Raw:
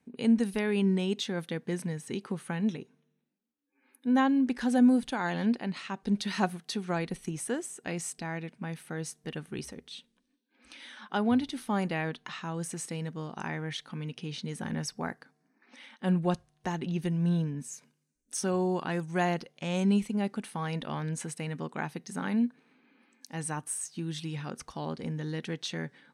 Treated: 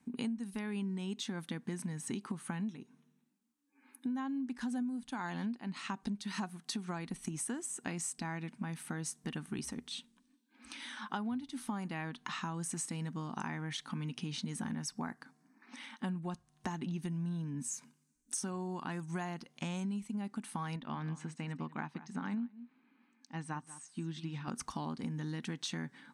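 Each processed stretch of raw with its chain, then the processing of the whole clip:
0:20.76–0:24.48: low-pass filter 4,200 Hz + single-tap delay 189 ms −14.5 dB + expander for the loud parts, over −42 dBFS
whole clip: octave-band graphic EQ 250/500/1,000/8,000 Hz +8/−9/+7/+7 dB; downward compressor 12 to 1, threshold −35 dBFS

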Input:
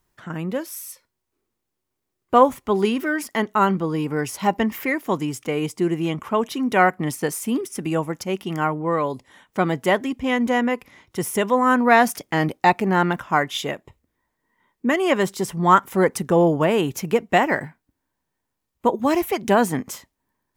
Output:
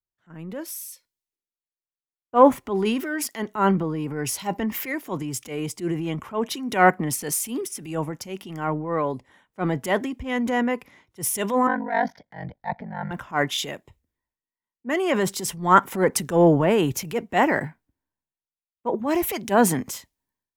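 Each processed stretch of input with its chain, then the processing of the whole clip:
0:11.67–0:13.11: phaser with its sweep stopped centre 1,800 Hz, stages 8 + ring modulation 24 Hz + high-frequency loss of the air 220 metres
whole clip: parametric band 1,200 Hz −2.5 dB 0.21 octaves; transient designer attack −7 dB, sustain +5 dB; multiband upward and downward expander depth 70%; level −2 dB

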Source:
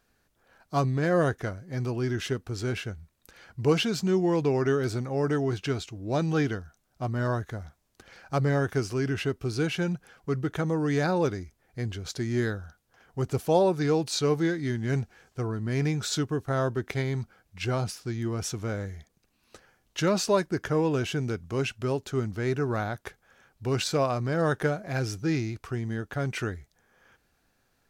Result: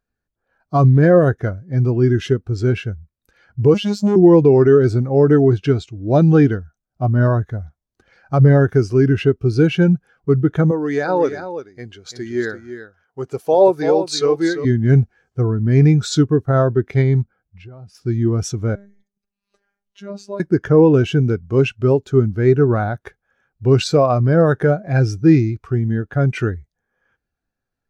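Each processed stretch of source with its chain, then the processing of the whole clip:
0:03.74–0:04.16: high-shelf EQ 3,400 Hz +9 dB + phases set to zero 205 Hz + saturating transformer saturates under 1,400 Hz
0:10.71–0:14.65: high-pass filter 540 Hz 6 dB per octave + single-tap delay 338 ms −7.5 dB
0:17.22–0:17.95: high-shelf EQ 3,500 Hz −9 dB + downward compressor, threshold −42 dBFS
0:18.75–0:20.40: mains-hum notches 60/120/180/240/300/360/420/480 Hz + downward compressor 1.5 to 1, threshold −60 dBFS + phases set to zero 200 Hz
whole clip: boost into a limiter +17 dB; every bin expanded away from the loudest bin 1.5 to 1; level −1 dB

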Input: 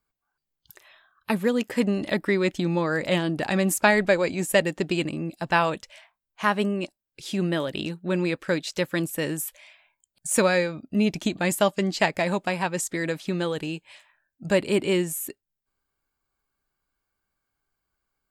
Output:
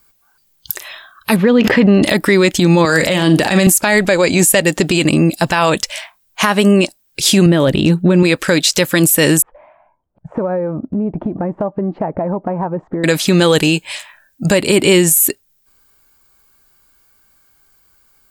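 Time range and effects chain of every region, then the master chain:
0:01.36–0:02.03: high-frequency loss of the air 300 metres + level that may fall only so fast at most 72 dB per second
0:02.85–0:03.67: flutter between parallel walls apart 7.4 metres, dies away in 0.21 s + multiband upward and downward compressor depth 100%
0:07.46–0:08.23: spectral tilt −2.5 dB per octave + notch filter 5,000 Hz, Q 18
0:09.42–0:13.04: low-pass filter 1,000 Hz 24 dB per octave + downward compressor 5 to 1, threshold −36 dBFS
whole clip: high-shelf EQ 4,300 Hz +10.5 dB; downward compressor, threshold −23 dBFS; boost into a limiter +20 dB; level −1 dB

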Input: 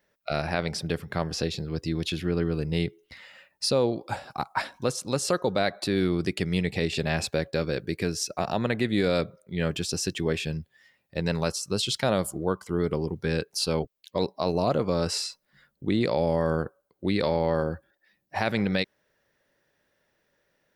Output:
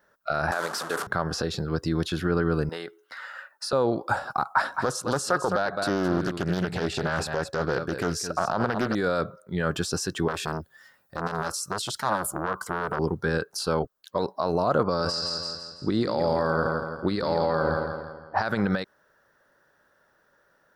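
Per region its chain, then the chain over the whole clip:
0:00.51–0:01.07: linear delta modulator 64 kbit/s, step −27 dBFS + high-pass filter 350 Hz + downward expander −34 dBFS
0:02.69–0:03.73: high-pass filter 470 Hz + parametric band 1,500 Hz +7 dB 0.63 octaves + downward compressor 3 to 1, threshold −34 dBFS
0:04.46–0:08.95: single-tap delay 212 ms −12 dB + highs frequency-modulated by the lows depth 0.47 ms
0:10.28–0:12.99: high-shelf EQ 6,000 Hz +9.5 dB + saturating transformer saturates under 2,000 Hz
0:14.83–0:18.49: low-pass that shuts in the quiet parts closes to 700 Hz, open at −21.5 dBFS + parametric band 4,800 Hz +14 dB 0.29 octaves + repeating echo 166 ms, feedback 46%, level −8.5 dB
whole clip: tilt shelving filter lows −4 dB, about 720 Hz; brickwall limiter −20 dBFS; high shelf with overshoot 1,800 Hz −7.5 dB, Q 3; level +6.5 dB

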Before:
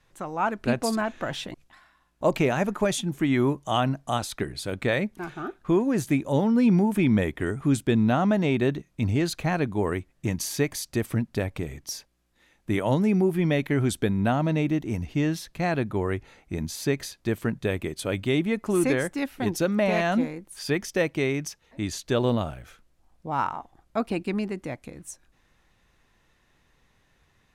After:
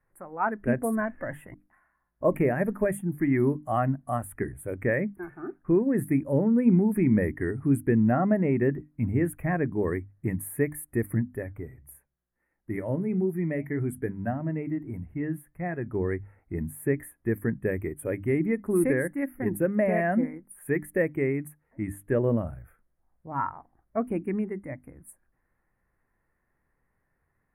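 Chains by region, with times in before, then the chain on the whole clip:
0:11.36–0:15.88: hum removal 69.91 Hz, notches 3 + flanger 1.6 Hz, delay 4.9 ms, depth 3.1 ms, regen −80%
whole clip: elliptic band-stop filter 1,900–10,000 Hz, stop band 80 dB; mains-hum notches 50/100/150/200/250/300 Hz; noise reduction from a noise print of the clip's start 9 dB

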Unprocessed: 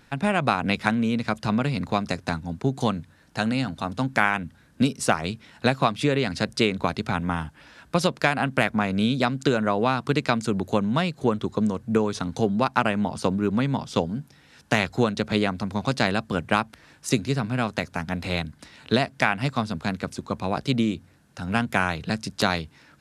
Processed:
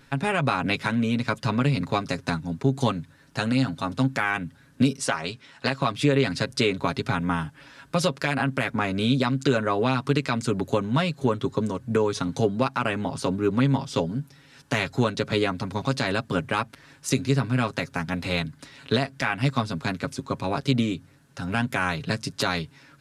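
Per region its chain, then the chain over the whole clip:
0:04.98–0:05.82: low-pass filter 9,400 Hz + low-shelf EQ 290 Hz −9 dB + highs frequency-modulated by the lows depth 0.11 ms
whole clip: parametric band 740 Hz −5 dB 0.26 octaves; comb filter 7.3 ms, depth 60%; brickwall limiter −10.5 dBFS

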